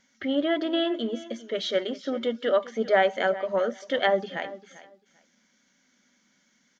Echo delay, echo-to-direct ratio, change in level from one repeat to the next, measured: 0.395 s, -17.0 dB, -15.0 dB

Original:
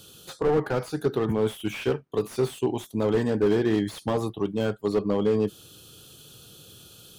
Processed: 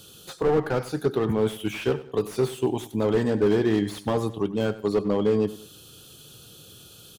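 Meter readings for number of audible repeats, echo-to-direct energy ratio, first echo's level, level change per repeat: 2, -16.0 dB, -16.5 dB, -7.5 dB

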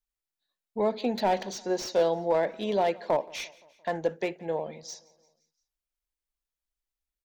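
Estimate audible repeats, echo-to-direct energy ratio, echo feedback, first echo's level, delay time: 3, -22.0 dB, 55%, -23.5 dB, 0.173 s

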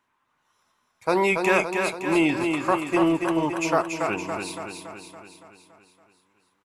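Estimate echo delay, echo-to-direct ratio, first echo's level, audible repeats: 0.282 s, -3.5 dB, -5.0 dB, 7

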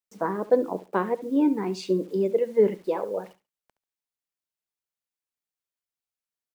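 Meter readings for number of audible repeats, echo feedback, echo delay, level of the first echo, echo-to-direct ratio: 2, 20%, 70 ms, -16.0 dB, -16.0 dB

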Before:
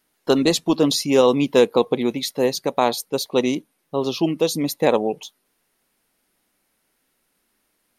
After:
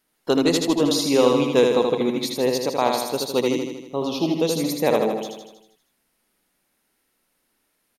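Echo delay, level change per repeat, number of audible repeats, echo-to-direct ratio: 79 ms, -4.5 dB, 7, -2.0 dB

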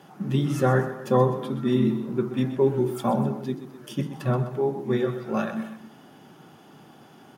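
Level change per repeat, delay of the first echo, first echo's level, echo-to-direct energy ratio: -5.5 dB, 0.127 s, -12.0 dB, -11.0 dB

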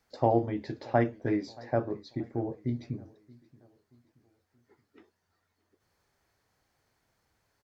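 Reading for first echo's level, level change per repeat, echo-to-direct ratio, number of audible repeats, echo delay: -23.5 dB, -7.5 dB, -22.5 dB, 2, 0.627 s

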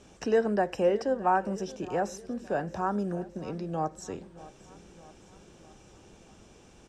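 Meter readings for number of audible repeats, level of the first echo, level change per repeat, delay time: 4, -19.0 dB, -5.0 dB, 0.62 s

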